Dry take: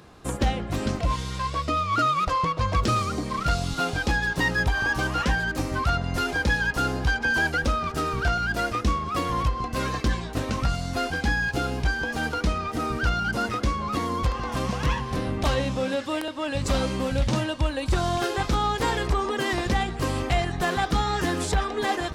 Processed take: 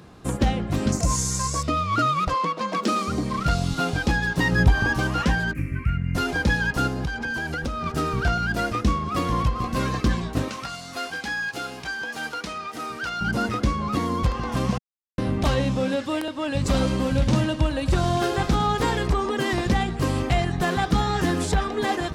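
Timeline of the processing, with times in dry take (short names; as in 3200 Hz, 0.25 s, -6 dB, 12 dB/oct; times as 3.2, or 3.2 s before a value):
0.92–1.63 resonant high shelf 4800 Hz +13.5 dB, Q 3
2.34–3.08 steep high-pass 190 Hz 48 dB/oct
4.52–4.94 low shelf 410 Hz +6.5 dB
5.53–6.15 EQ curve 150 Hz 0 dB, 500 Hz -16 dB, 770 Hz -29 dB, 1500 Hz -7 dB, 2400 Hz +4 dB, 3600 Hz -29 dB, 6200 Hz -22 dB, 11000 Hz -11 dB
6.87–7.86 compressor, threshold -26 dBFS
8.67–9.34 echo throw 0.44 s, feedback 70%, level -12 dB
10.48–13.21 HPF 1100 Hz 6 dB/oct
14.78–15.18 mute
16.6–18.85 feedback echo 0.106 s, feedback 54%, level -13 dB
20.48–20.94 echo throw 0.37 s, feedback 50%, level -15 dB
whole clip: bell 170 Hz +6 dB 1.8 oct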